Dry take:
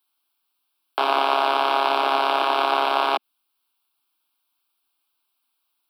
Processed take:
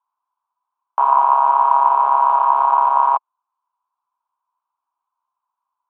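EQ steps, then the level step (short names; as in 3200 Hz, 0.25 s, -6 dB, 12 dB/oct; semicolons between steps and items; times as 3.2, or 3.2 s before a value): HPF 700 Hz 12 dB/oct; synth low-pass 1000 Hz, resonance Q 12; air absorption 67 m; -5.0 dB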